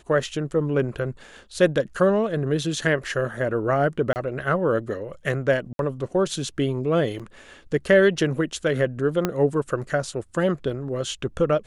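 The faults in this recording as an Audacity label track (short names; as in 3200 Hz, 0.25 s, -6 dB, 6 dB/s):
4.130000	4.160000	gap 29 ms
5.730000	5.790000	gap 62 ms
7.190000	7.200000	gap 6.6 ms
9.250000	9.250000	pop -8 dBFS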